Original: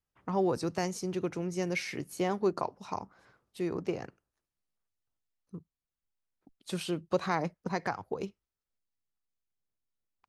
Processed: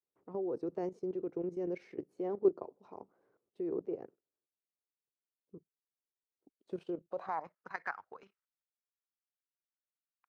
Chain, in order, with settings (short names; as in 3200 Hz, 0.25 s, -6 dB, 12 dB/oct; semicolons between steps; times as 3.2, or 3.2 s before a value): band-pass sweep 410 Hz -> 1500 Hz, 6.87–7.68; level quantiser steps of 13 dB; gain +4 dB